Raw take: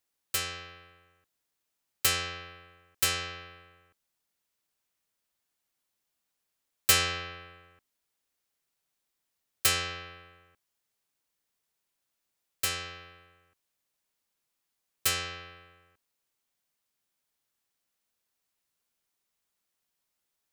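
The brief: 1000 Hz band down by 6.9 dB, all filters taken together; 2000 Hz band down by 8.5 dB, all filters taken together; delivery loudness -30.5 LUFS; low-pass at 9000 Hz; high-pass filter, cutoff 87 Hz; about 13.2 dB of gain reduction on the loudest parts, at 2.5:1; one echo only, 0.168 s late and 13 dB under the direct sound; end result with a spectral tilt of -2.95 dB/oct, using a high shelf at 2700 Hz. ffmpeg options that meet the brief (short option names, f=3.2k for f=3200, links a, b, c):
-af "highpass=87,lowpass=9k,equalizer=f=1k:t=o:g=-5.5,equalizer=f=2k:t=o:g=-7.5,highshelf=f=2.7k:g=-4.5,acompressor=threshold=-45dB:ratio=2.5,aecho=1:1:168:0.224,volume=16dB"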